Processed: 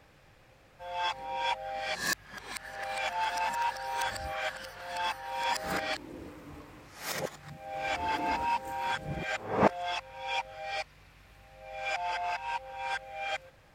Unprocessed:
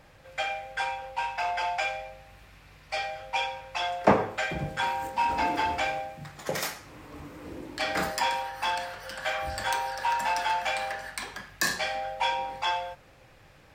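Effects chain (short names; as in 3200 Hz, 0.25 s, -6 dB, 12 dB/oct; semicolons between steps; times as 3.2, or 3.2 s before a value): whole clip reversed; gain -4 dB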